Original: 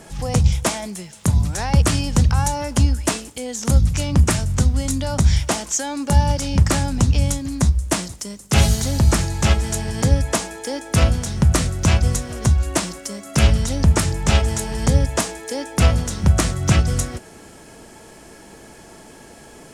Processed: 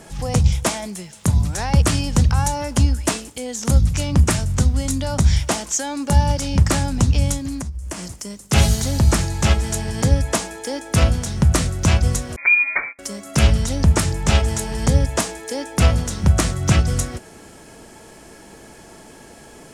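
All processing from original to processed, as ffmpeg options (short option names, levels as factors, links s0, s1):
-filter_complex "[0:a]asettb=1/sr,asplit=3[s0][s1][s2];[s0]atrim=end=7.604[s3];[s1]atrim=start=7.6:end=8.31,asetpts=PTS-STARTPTS,afade=t=in:d=0.004:c=qsin,afade=t=out:st=0.706:d=0.004:c=qsin,equalizer=f=3800:t=o:w=0.26:g=-7,acompressor=threshold=0.0562:ratio=8:attack=3.2:release=140:knee=1:detection=peak[s4];[s2]atrim=start=8.306[s5];[s3][s4]acrossfade=d=0.004:c1=hsin:c2=qsin[s6];[s6][s5]acrossfade=d=0.004:c1=qsin:c2=hsin,asettb=1/sr,asplit=3[s7][s8][s9];[s7]atrim=end=12.364[s10];[s8]atrim=start=12.36:end=12.99,asetpts=PTS-STARTPTS,afade=t=in:d=0.004:c=qsin,afade=t=out:st=0.626:d=0.004:c=qsin,agate=range=0.0631:threshold=0.0316:ratio=16:release=100:detection=peak,lowpass=f=2100:t=q:w=0.5098,lowpass=f=2100:t=q:w=0.6013,lowpass=f=2100:t=q:w=0.9,lowpass=f=2100:t=q:w=2.563,afreqshift=-2500[s11];[s9]atrim=start=12.986[s12];[s10][s11]acrossfade=d=0.004:c1=hsin:c2=qsin[s13];[s13][s12]acrossfade=d=0.004:c1=qsin:c2=hsin"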